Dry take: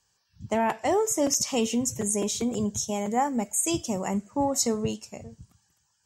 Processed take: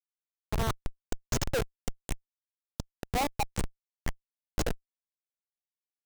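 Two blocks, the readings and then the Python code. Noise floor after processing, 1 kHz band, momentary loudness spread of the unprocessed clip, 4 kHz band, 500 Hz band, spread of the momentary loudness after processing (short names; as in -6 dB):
under -85 dBFS, -8.0 dB, 6 LU, -7.0 dB, -10.5 dB, 13 LU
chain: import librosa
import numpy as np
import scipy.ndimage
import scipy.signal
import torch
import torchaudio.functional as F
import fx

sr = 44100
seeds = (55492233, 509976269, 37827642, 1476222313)

y = fx.filter_lfo_highpass(x, sr, shape='saw_up', hz=0.66, low_hz=490.0, high_hz=3600.0, q=7.9)
y = fx.schmitt(y, sr, flips_db=-17.0)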